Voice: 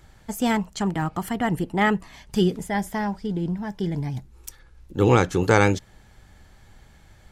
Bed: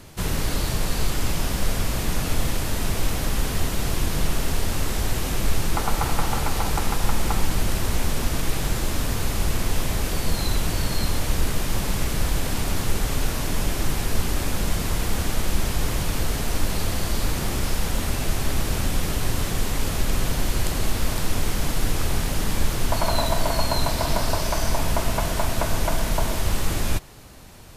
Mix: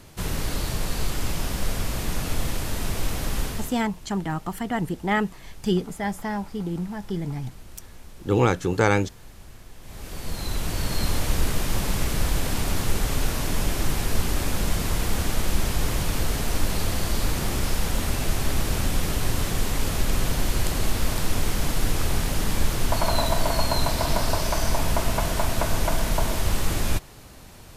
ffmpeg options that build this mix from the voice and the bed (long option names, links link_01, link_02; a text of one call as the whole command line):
ffmpeg -i stem1.wav -i stem2.wav -filter_complex "[0:a]adelay=3300,volume=-2.5dB[link_01];[1:a]volume=19dB,afade=type=out:start_time=3.42:duration=0.39:silence=0.105925,afade=type=in:start_time=9.81:duration=1.3:silence=0.0794328[link_02];[link_01][link_02]amix=inputs=2:normalize=0" out.wav